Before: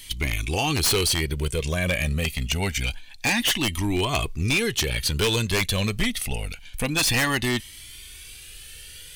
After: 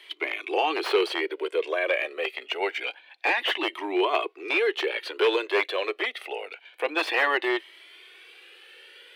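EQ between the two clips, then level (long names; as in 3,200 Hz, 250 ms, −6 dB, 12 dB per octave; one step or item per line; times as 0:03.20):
Butterworth high-pass 340 Hz 72 dB per octave
high-frequency loss of the air 480 metres
+5.0 dB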